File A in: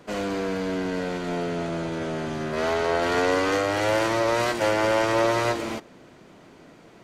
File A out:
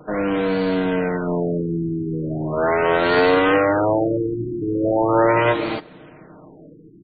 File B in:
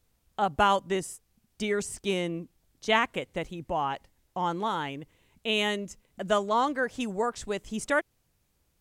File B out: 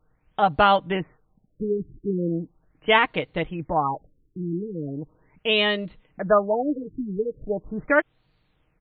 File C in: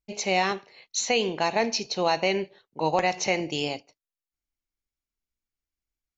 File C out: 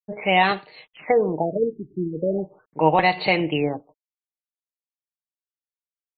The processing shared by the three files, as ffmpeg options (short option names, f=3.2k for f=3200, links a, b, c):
-af "aecho=1:1:6.5:0.47,acrusher=bits=11:mix=0:aa=0.000001,afftfilt=real='re*lt(b*sr/1024,400*pow(4700/400,0.5+0.5*sin(2*PI*0.39*pts/sr)))':imag='im*lt(b*sr/1024,400*pow(4700/400,0.5+0.5*sin(2*PI*0.39*pts/sr)))':win_size=1024:overlap=0.75,volume=5.5dB"